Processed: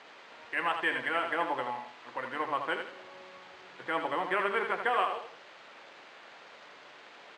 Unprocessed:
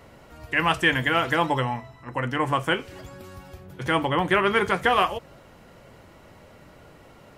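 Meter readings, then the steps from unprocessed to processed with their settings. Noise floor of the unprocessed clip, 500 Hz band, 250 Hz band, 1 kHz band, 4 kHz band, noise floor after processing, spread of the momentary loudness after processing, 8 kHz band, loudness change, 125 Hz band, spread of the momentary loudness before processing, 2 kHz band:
−51 dBFS, −8.5 dB, −14.0 dB, −7.0 dB, −12.0 dB, −53 dBFS, 21 LU, below −10 dB, −8.5 dB, −25.0 dB, 18 LU, −8.0 dB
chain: bit-depth reduction 6 bits, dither triangular
repeating echo 81 ms, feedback 35%, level −7 dB
bad sample-rate conversion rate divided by 4×, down filtered, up hold
band-pass filter 420–2,600 Hz
level −7.5 dB

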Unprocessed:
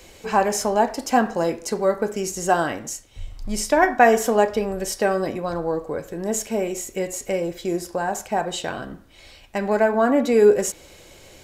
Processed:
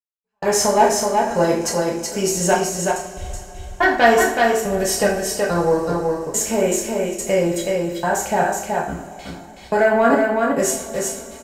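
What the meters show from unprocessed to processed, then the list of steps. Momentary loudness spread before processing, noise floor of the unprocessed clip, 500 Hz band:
14 LU, −48 dBFS, +2.5 dB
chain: noise gate with hold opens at −35 dBFS
in parallel at −1.5 dB: downward compressor, threshold −24 dBFS, peak gain reduction 14.5 dB
on the sum: sine wavefolder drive 4 dB, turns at −1 dBFS
gate pattern "....xxxx" 142 BPM −60 dB
on a send: single-tap delay 375 ms −3.5 dB
on the sum: coupled-rooms reverb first 0.46 s, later 4.4 s, from −22 dB, DRR −3.5 dB
level −9.5 dB

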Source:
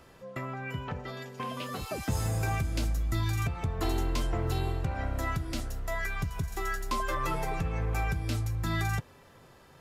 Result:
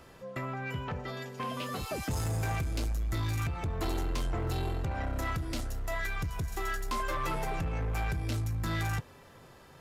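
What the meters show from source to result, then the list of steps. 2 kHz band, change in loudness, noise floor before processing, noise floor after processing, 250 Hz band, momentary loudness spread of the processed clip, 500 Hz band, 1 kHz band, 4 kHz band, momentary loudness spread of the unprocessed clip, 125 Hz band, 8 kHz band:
−1.5 dB, −1.5 dB, −56 dBFS, −55 dBFS, −1.5 dB, 5 LU, −1.5 dB, −1.5 dB, −1.0 dB, 7 LU, −2.0 dB, −1.5 dB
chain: soft clipping −28.5 dBFS, distortion −13 dB
level +1.5 dB

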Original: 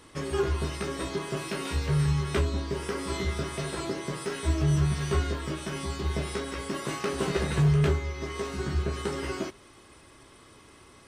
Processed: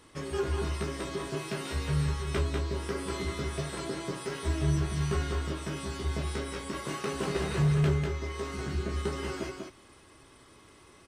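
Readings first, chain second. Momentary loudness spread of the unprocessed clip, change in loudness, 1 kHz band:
9 LU, −2.5 dB, −2.5 dB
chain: single-tap delay 195 ms −4.5 dB
level −4 dB

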